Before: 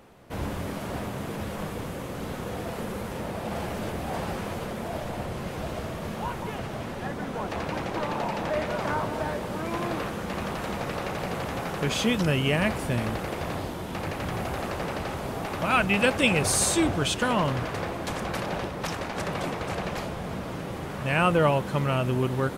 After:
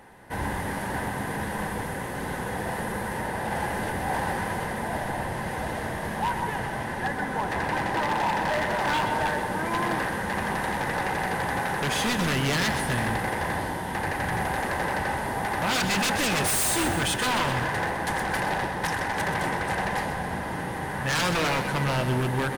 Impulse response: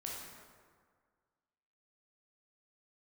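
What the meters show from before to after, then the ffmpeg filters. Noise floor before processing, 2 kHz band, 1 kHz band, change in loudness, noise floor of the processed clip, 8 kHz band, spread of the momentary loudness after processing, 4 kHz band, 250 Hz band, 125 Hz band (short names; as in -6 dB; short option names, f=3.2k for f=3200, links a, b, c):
-35 dBFS, +4.5 dB, +4.5 dB, +1.5 dB, -32 dBFS, +1.0 dB, 7 LU, +2.0 dB, -1.0 dB, -0.5 dB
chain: -af "superequalizer=9b=2.51:11b=3.16:16b=2.24,aeval=exprs='0.1*(abs(mod(val(0)/0.1+3,4)-2)-1)':c=same,aecho=1:1:127|254|381|508|635|762:0.355|0.181|0.0923|0.0471|0.024|0.0122"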